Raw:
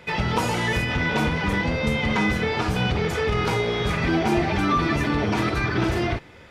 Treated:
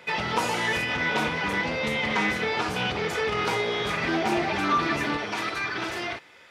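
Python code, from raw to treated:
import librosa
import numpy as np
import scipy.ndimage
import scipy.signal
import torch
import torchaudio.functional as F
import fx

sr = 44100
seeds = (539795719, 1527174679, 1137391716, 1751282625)

y = fx.highpass(x, sr, hz=fx.steps((0.0, 450.0), (5.17, 1200.0)), slope=6)
y = fx.doppler_dist(y, sr, depth_ms=0.11)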